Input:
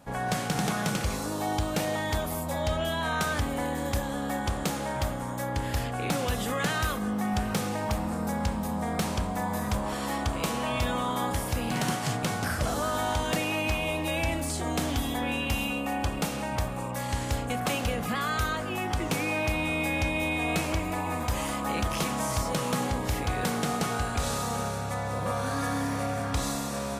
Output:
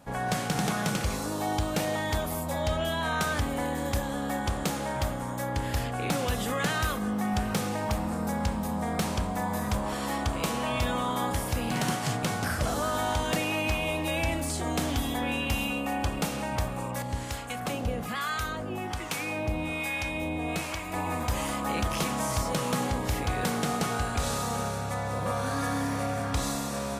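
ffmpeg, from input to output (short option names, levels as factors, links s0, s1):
-filter_complex "[0:a]asettb=1/sr,asplit=3[s0][s1][s2];[s0]atrim=end=17.024[s3];[s1]atrim=start=17.02:end=20.94,asetpts=PTS-STARTPTS,afade=t=in:d=0.004:c=qsin,afade=t=out:st=3.916:d=0.004:c=qsin,acrossover=split=820[s4][s5];[s4]aeval=exprs='val(0)*(1-0.7/2+0.7/2*cos(2*PI*1.2*n/s))':c=same[s6];[s5]aeval=exprs='val(0)*(1-0.7/2-0.7/2*cos(2*PI*1.2*n/s))':c=same[s7];[s6][s7]amix=inputs=2:normalize=0[s8];[s2]atrim=start=20.936[s9];[s3][s8]acrossfade=d=0.004:c1=hsin:c2=qsin[s10];[s10][s9]acrossfade=d=0.004:c1=qsin:c2=hsin"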